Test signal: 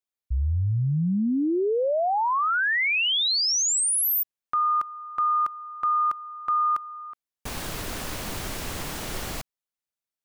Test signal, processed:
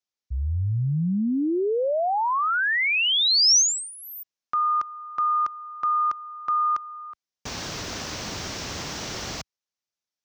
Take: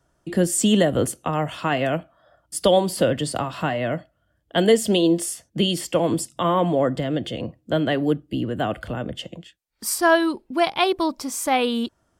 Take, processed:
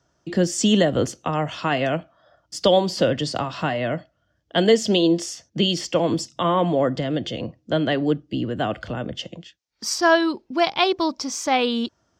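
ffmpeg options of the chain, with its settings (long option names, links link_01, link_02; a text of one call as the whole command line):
ffmpeg -i in.wav -af "highpass=63,highshelf=frequency=7800:width_type=q:width=3:gain=-11.5" out.wav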